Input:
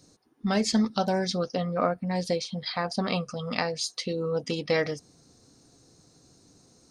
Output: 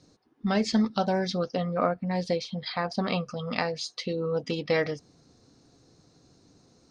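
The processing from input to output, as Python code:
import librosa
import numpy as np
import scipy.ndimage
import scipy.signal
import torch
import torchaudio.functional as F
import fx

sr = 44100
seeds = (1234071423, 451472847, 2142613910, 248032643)

y = scipy.signal.sosfilt(scipy.signal.butter(2, 4700.0, 'lowpass', fs=sr, output='sos'), x)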